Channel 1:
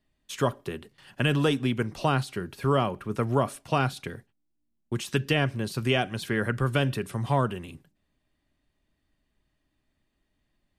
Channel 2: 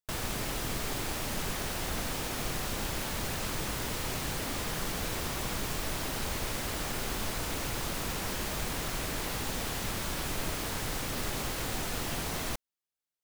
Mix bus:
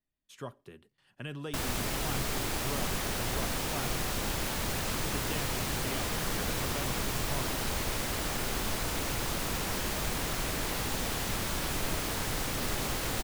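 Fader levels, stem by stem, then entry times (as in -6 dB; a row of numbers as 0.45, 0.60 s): -16.0, +1.5 dB; 0.00, 1.45 s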